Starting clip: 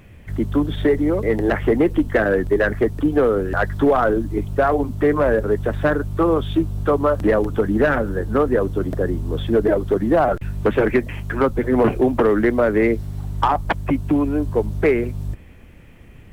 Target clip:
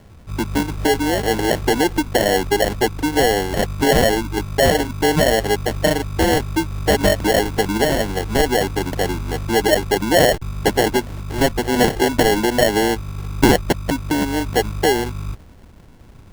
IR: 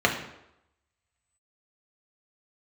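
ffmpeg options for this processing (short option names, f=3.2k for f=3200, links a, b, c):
-filter_complex "[0:a]highshelf=f=1.5k:t=q:w=3:g=-12.5,acrossover=split=360[a][b];[a]acompressor=threshold=-20dB:ratio=6[c];[c][b]amix=inputs=2:normalize=0,acrusher=samples=36:mix=1:aa=0.000001"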